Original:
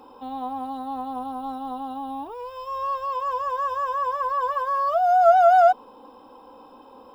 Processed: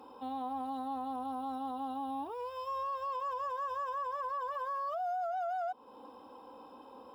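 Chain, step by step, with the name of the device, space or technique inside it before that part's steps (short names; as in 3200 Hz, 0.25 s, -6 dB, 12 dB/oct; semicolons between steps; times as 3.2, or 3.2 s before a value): podcast mastering chain (HPF 66 Hz; de-esser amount 80%; compressor 3:1, threshold -28 dBFS, peak gain reduction 12 dB; limiter -26 dBFS, peak gain reduction 7 dB; gain -4.5 dB; MP3 112 kbps 44100 Hz)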